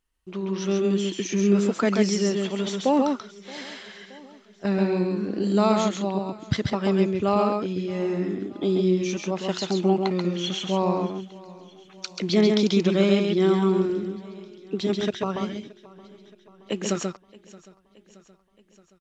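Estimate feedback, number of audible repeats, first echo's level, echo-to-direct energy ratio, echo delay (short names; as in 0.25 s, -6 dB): no steady repeat, 7, -3.5 dB, -3.5 dB, 0.135 s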